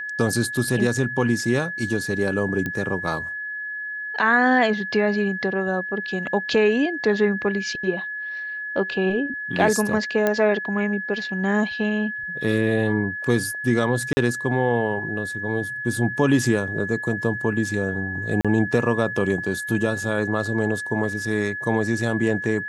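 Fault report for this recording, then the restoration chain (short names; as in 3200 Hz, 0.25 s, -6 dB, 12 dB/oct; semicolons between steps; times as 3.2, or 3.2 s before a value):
tone 1700 Hz -28 dBFS
2.66 pop -14 dBFS
10.27 pop -8 dBFS
14.13–14.17 gap 40 ms
18.41–18.45 gap 36 ms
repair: de-click; notch 1700 Hz, Q 30; interpolate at 14.13, 40 ms; interpolate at 18.41, 36 ms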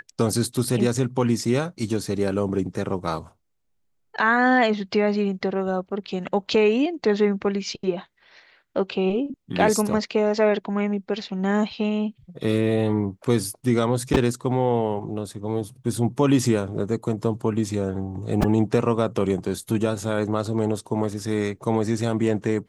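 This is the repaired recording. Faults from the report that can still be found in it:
none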